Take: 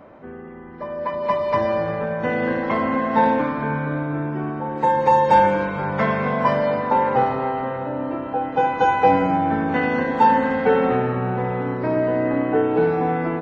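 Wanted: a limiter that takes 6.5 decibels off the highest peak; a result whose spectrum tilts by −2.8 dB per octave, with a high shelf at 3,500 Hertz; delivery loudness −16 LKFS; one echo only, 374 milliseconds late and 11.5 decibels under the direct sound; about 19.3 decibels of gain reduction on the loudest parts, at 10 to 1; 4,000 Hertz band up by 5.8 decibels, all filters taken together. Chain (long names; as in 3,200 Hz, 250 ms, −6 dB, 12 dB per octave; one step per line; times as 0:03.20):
high-shelf EQ 3,500 Hz +6 dB
parametric band 4,000 Hz +4 dB
downward compressor 10 to 1, threshold −30 dBFS
brickwall limiter −26 dBFS
single-tap delay 374 ms −11.5 dB
level +18.5 dB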